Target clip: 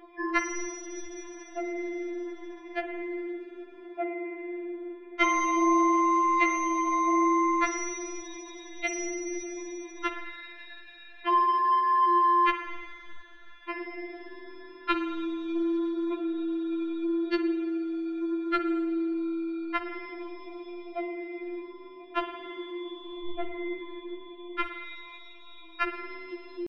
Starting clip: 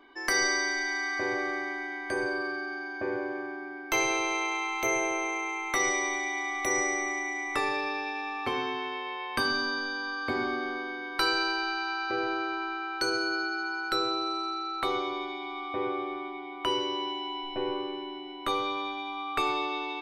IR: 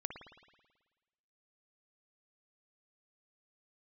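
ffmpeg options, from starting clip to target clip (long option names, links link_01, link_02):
-filter_complex "[0:a]atempo=0.75,lowpass=frequency=2600:width=0.5412,lowpass=frequency=2600:width=1.3066,equalizer=frequency=450:width=0.61:gain=3.5,acompressor=threshold=-31dB:ratio=5,crystalizer=i=9.5:c=0,asplit=2[link_01][link_02];[1:a]atrim=start_sample=2205[link_03];[link_02][link_03]afir=irnorm=-1:irlink=0,volume=4.5dB[link_04];[link_01][link_04]amix=inputs=2:normalize=0,afftfilt=real='re*4*eq(mod(b,16),0)':imag='im*4*eq(mod(b,16),0)':win_size=2048:overlap=0.75"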